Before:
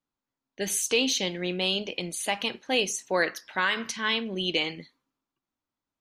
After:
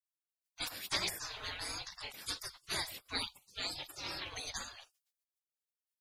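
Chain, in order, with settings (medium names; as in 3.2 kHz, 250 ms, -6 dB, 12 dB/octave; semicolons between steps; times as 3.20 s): peaking EQ 79 Hz +10 dB 0.69 oct; spectral gate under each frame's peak -30 dB weak; peaking EQ 4.4 kHz +2.5 dB; trim +10.5 dB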